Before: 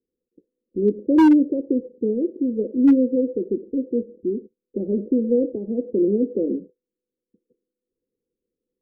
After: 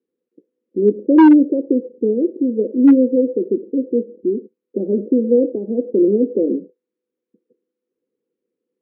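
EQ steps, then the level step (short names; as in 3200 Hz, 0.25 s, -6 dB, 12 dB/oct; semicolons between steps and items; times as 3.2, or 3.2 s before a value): BPF 220–2400 Hz; +6.0 dB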